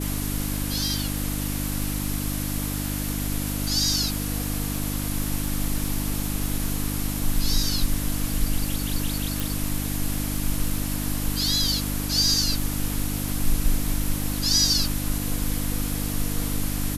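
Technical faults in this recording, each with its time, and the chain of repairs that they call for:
surface crackle 35 per second −32 dBFS
mains hum 50 Hz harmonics 6 −29 dBFS
0:09.40: click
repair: click removal
hum removal 50 Hz, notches 6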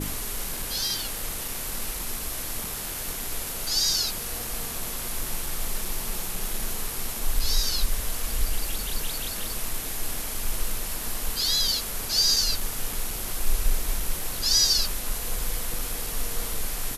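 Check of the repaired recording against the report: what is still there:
none of them is left

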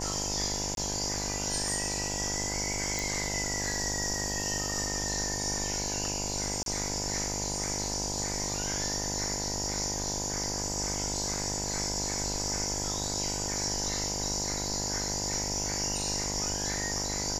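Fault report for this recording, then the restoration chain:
mains buzz 50 Hz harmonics 20 −37 dBFS
0:00.75–0:00.77: drop-out 22 ms
0:02.99: click
0:06.63–0:06.66: drop-out 32 ms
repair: click removal
hum removal 50 Hz, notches 20
repair the gap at 0:00.75, 22 ms
repair the gap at 0:06.63, 32 ms

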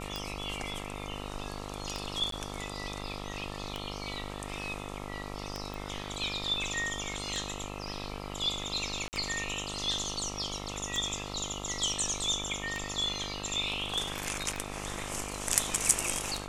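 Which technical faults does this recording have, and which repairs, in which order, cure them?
mains buzz 50 Hz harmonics 27 −41 dBFS
scratch tick 33 1/3 rpm −19 dBFS
0:02.31–0:02.32: drop-out 13 ms
0:05.74: click
0:09.08–0:09.13: drop-out 49 ms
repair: click removal
hum removal 50 Hz, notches 27
repair the gap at 0:02.31, 13 ms
repair the gap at 0:09.08, 49 ms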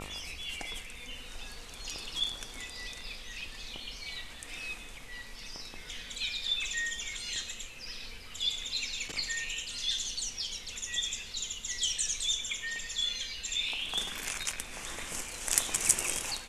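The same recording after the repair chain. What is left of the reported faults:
none of them is left

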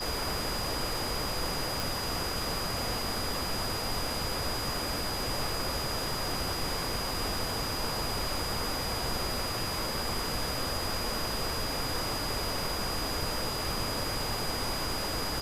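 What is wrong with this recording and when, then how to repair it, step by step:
whistle 4,900 Hz −36 dBFS
0:01.80: click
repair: click removal
notch filter 4,900 Hz, Q 30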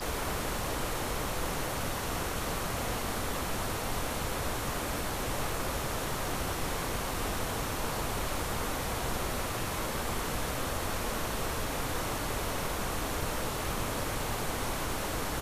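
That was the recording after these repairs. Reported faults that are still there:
none of them is left

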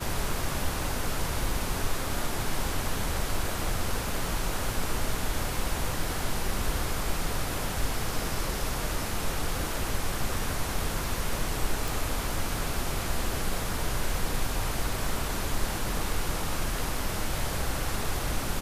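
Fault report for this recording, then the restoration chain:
0:11.88: click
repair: click removal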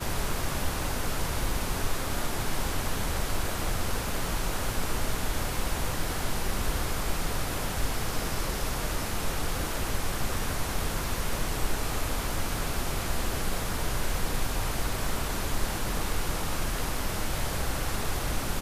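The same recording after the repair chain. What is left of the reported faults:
none of them is left

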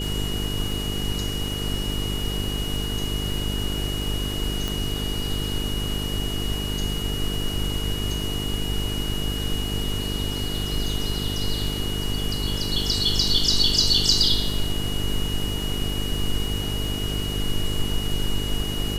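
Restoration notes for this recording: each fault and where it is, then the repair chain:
mains buzz 50 Hz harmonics 9 −29 dBFS
surface crackle 46 per second −33 dBFS
whistle 2,900 Hz −31 dBFS
0:04.68: click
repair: click removal
notch filter 2,900 Hz, Q 30
hum removal 50 Hz, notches 9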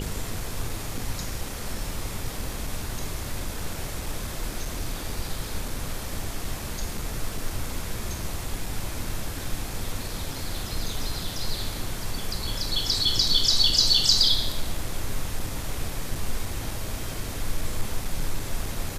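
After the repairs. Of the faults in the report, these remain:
0:04.68: click

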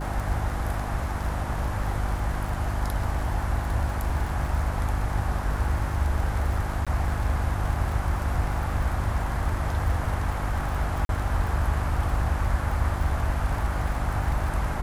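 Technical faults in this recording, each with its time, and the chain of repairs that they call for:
surface crackle 49 per second −32 dBFS
mains hum 50 Hz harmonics 7 −30 dBFS
0:06.85–0:06.87: drop-out 16 ms
0:11.05–0:11.09: drop-out 42 ms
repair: click removal
hum removal 50 Hz, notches 7
repair the gap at 0:06.85, 16 ms
repair the gap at 0:11.05, 42 ms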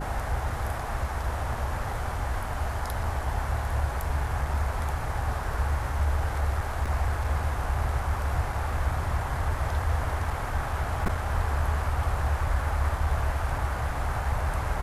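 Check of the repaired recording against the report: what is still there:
none of them is left

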